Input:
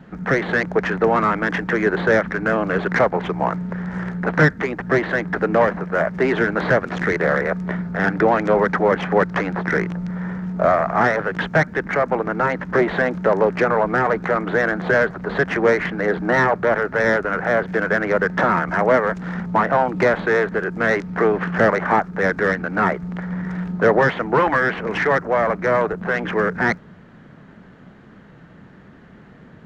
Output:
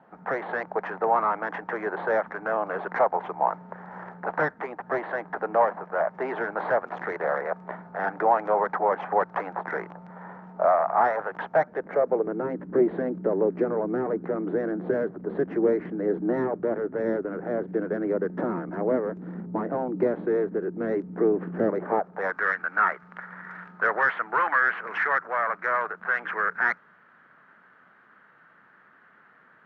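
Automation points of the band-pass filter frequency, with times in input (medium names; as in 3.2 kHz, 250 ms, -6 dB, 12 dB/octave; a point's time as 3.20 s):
band-pass filter, Q 2.3
11.43 s 830 Hz
12.50 s 320 Hz
21.77 s 320 Hz
22.44 s 1.4 kHz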